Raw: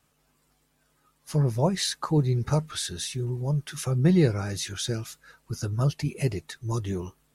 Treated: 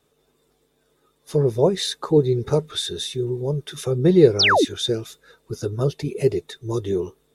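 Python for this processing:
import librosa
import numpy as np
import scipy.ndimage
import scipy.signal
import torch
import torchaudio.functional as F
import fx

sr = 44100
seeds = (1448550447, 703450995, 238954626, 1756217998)

y = fx.small_body(x, sr, hz=(420.0, 3600.0), ring_ms=25, db=16)
y = fx.spec_paint(y, sr, seeds[0], shape='fall', start_s=4.39, length_s=0.26, low_hz=240.0, high_hz=6200.0, level_db=-15.0)
y = y * 10.0 ** (-1.0 / 20.0)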